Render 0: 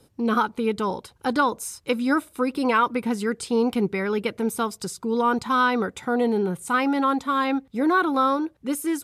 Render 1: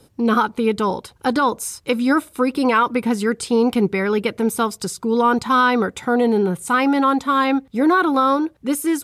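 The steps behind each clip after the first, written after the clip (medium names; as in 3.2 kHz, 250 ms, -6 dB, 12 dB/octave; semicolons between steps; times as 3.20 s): loudness maximiser +11.5 dB; trim -6 dB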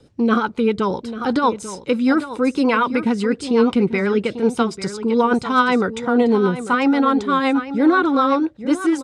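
Bessel low-pass 6.1 kHz, order 6; delay 844 ms -12 dB; rotary cabinet horn 8 Hz; trim +2.5 dB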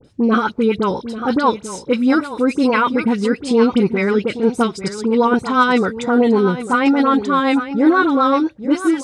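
phase dispersion highs, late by 47 ms, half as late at 1.8 kHz; trim +2 dB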